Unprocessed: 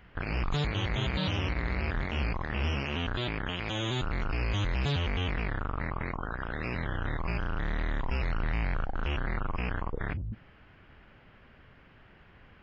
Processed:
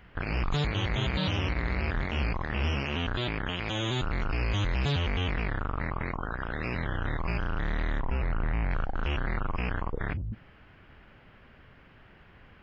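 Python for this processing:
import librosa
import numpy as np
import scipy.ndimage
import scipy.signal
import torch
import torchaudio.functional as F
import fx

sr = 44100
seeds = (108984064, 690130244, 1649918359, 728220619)

y = fx.bessel_lowpass(x, sr, hz=1800.0, order=2, at=(7.99, 8.71))
y = y * 10.0 ** (1.5 / 20.0)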